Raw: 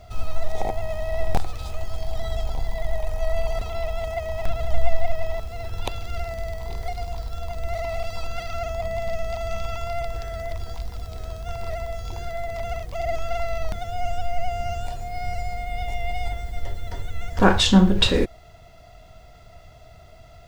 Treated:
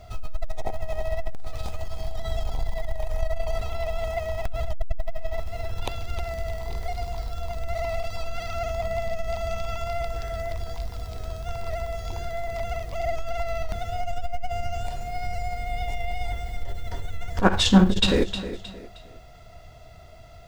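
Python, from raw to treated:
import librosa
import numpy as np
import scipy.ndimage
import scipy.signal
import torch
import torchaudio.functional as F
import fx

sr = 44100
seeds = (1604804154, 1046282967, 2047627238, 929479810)

p1 = x + fx.echo_feedback(x, sr, ms=312, feedback_pct=34, wet_db=-13, dry=0)
y = fx.transformer_sat(p1, sr, knee_hz=95.0)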